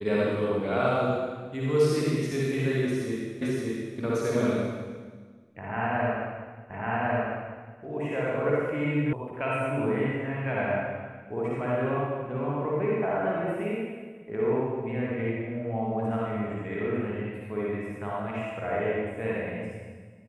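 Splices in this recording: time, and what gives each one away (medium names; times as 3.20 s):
3.42 s: repeat of the last 0.57 s
6.70 s: repeat of the last 1.1 s
9.13 s: sound stops dead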